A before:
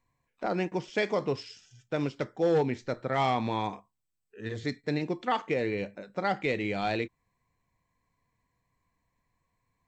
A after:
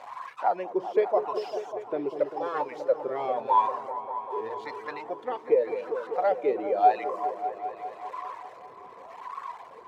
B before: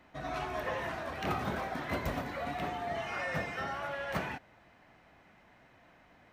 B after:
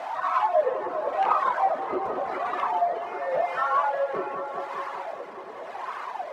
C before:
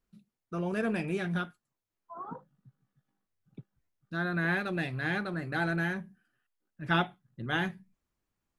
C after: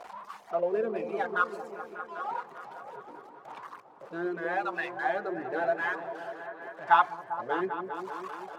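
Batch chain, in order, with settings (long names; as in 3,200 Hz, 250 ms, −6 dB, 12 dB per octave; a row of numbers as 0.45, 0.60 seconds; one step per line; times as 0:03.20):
converter with a step at zero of −35.5 dBFS
reverb reduction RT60 1.3 s
LFO wah 0.88 Hz 380–1,100 Hz, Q 7.5
tilt shelving filter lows −7.5 dB, about 640 Hz
on a send: echo whose low-pass opens from repeat to repeat 198 ms, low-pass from 400 Hz, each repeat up 1 octave, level −6 dB
on the sum: normalise the peak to −9 dBFS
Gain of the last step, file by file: +13.0, +18.5, +15.0 decibels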